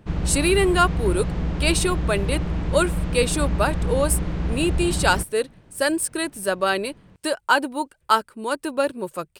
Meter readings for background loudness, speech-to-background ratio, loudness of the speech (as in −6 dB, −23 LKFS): −26.5 LKFS, 3.0 dB, −23.5 LKFS